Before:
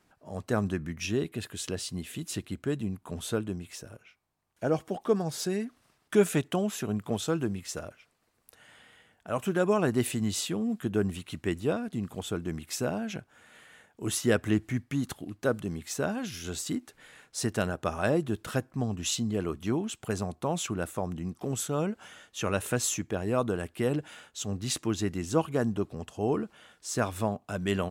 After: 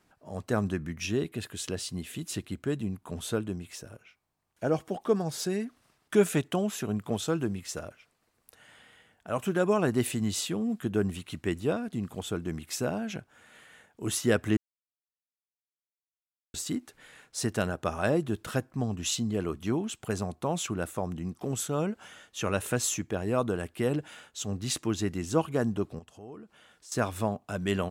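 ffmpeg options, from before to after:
ffmpeg -i in.wav -filter_complex "[0:a]asettb=1/sr,asplit=3[link_01][link_02][link_03];[link_01]atrim=end=25.994[link_04];[link_02]atrim=start=25.99:end=26.92,asetpts=PTS-STARTPTS,afade=type=in:duration=0.004:curve=qsin,afade=type=out:start_time=0.926:duration=0.004:curve=qsin,acompressor=threshold=-56dB:ratio=2:attack=3.2:release=140:knee=1:detection=peak[link_05];[link_03]atrim=start=26.916[link_06];[link_04][link_05]acrossfade=duration=0.004:curve1=hsin:curve2=qsin[link_07];[link_07][link_06]acrossfade=duration=0.004:curve1=qsin:curve2=hsin,asplit=3[link_08][link_09][link_10];[link_08]atrim=end=14.57,asetpts=PTS-STARTPTS,afade=type=out:start_time=14.566:duration=0.004:curve=hsin[link_11];[link_09]atrim=start=14.57:end=16.54,asetpts=PTS-STARTPTS,volume=0[link_12];[link_10]atrim=start=16.54,asetpts=PTS-STARTPTS,afade=type=in:duration=0.004:curve=hsin[link_13];[link_11][link_12][link_13]concat=n=3:v=0:a=1" out.wav

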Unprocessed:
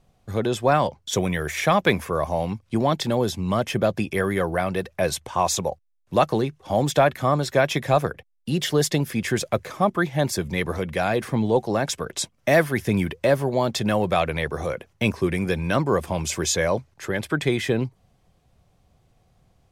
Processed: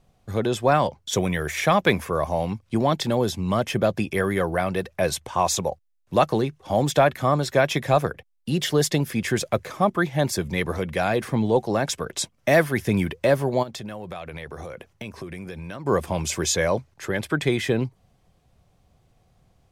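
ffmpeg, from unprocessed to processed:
ffmpeg -i in.wav -filter_complex "[0:a]asplit=3[link_01][link_02][link_03];[link_01]afade=type=out:start_time=13.62:duration=0.02[link_04];[link_02]acompressor=threshold=-32dB:ratio=6:attack=3.2:release=140:knee=1:detection=peak,afade=type=in:start_time=13.62:duration=0.02,afade=type=out:start_time=15.85:duration=0.02[link_05];[link_03]afade=type=in:start_time=15.85:duration=0.02[link_06];[link_04][link_05][link_06]amix=inputs=3:normalize=0" out.wav

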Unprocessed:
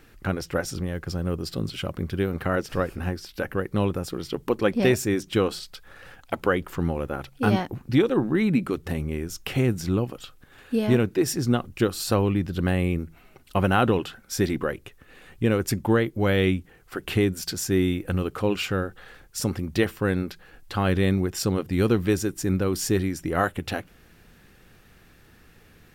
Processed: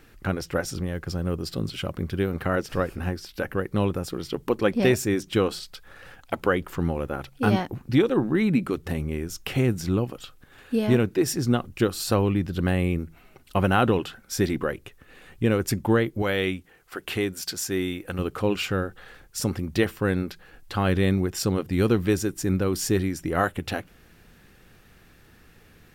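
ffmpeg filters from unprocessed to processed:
ffmpeg -i in.wav -filter_complex "[0:a]asettb=1/sr,asplit=3[link_01][link_02][link_03];[link_01]atrim=end=16.224[link_04];[link_02]atrim=start=16.22:end=18.19,asetpts=PTS-STARTPTS,afade=type=in:duration=0.004:curve=qsin,afade=type=out:start_time=1.966:duration=0.004:curve=qsin,lowshelf=frequency=280:gain=-10.5[link_05];[link_03]atrim=start=18.186[link_06];[link_04][link_05]acrossfade=duration=0.004:curve1=hsin:curve2=qsin[link_07];[link_07][link_06]acrossfade=duration=0.004:curve1=qsin:curve2=hsin" out.wav

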